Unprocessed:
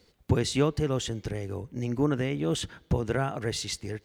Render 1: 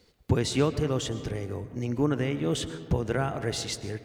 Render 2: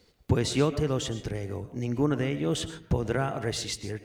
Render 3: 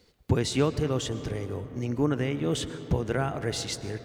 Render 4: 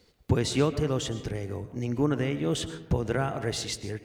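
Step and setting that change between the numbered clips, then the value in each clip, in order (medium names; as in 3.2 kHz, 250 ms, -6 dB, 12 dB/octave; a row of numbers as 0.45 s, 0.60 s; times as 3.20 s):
algorithmic reverb, RT60: 2.1 s, 0.45 s, 4.4 s, 0.98 s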